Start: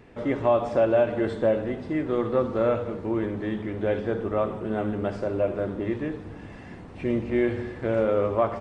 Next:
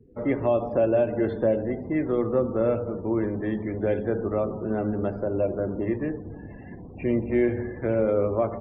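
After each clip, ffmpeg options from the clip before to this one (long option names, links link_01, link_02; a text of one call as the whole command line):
ffmpeg -i in.wav -filter_complex "[0:a]acrossover=split=250|680|1800[link_01][link_02][link_03][link_04];[link_03]acompressor=threshold=-40dB:ratio=8[link_05];[link_01][link_02][link_05][link_04]amix=inputs=4:normalize=0,afftdn=noise_reduction=36:noise_floor=-43,adynamicequalizer=threshold=0.00631:dfrequency=2200:dqfactor=0.7:tfrequency=2200:tqfactor=0.7:attack=5:release=100:ratio=0.375:range=2.5:mode=cutabove:tftype=highshelf,volume=1.5dB" out.wav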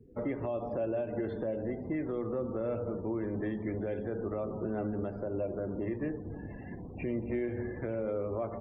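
ffmpeg -i in.wav -af "alimiter=limit=-23.5dB:level=0:latency=1:release=264,volume=-2dB" out.wav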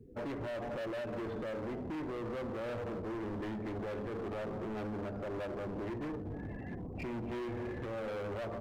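ffmpeg -i in.wav -af "asoftclip=type=hard:threshold=-38.5dB,volume=1.5dB" out.wav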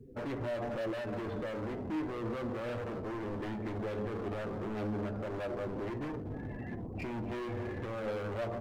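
ffmpeg -i in.wav -af "flanger=delay=7.6:depth=2.5:regen=55:speed=0.33:shape=sinusoidal,volume=6dB" out.wav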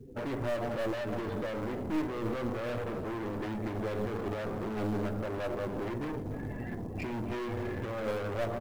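ffmpeg -i in.wav -af "aeval=exprs='0.0299*(cos(1*acos(clip(val(0)/0.0299,-1,1)))-cos(1*PI/2))+0.00596*(cos(2*acos(clip(val(0)/0.0299,-1,1)))-cos(2*PI/2))+0.00376*(cos(3*acos(clip(val(0)/0.0299,-1,1)))-cos(3*PI/2))+0.00211*(cos(5*acos(clip(val(0)/0.0299,-1,1)))-cos(5*PI/2))':channel_layout=same,acrusher=bits=8:mode=log:mix=0:aa=0.000001,aecho=1:1:302:0.133,volume=4dB" out.wav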